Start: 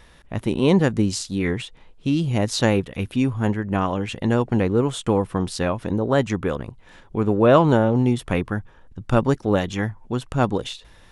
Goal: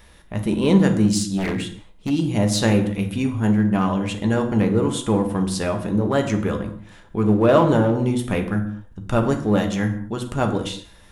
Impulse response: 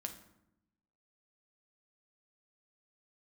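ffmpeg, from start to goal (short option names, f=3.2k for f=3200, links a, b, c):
-filter_complex "[1:a]atrim=start_sample=2205,afade=t=out:st=0.3:d=0.01,atrim=end_sample=13671[a];[0:a][a]afir=irnorm=-1:irlink=0,asplit=2[b][c];[c]asoftclip=type=hard:threshold=-21dB,volume=-10dB[d];[b][d]amix=inputs=2:normalize=0,highshelf=f=9.9k:g=11.5,asplit=3[e][f][g];[e]afade=t=out:st=1.37:d=0.02[h];[f]aeval=exprs='0.119*(abs(mod(val(0)/0.119+3,4)-2)-1)':c=same,afade=t=in:st=1.37:d=0.02,afade=t=out:st=2.09:d=0.02[i];[g]afade=t=in:st=2.09:d=0.02[j];[h][i][j]amix=inputs=3:normalize=0"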